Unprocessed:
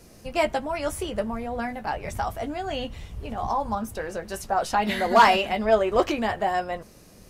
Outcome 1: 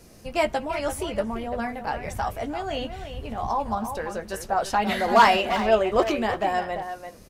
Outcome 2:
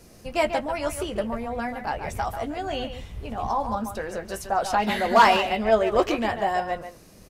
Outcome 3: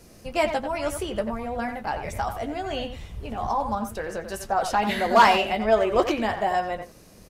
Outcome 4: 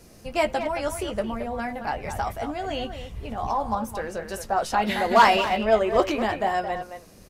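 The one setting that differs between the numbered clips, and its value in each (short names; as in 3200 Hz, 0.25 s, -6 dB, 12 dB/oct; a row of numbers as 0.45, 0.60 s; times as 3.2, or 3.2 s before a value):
speakerphone echo, time: 340, 140, 90, 220 ms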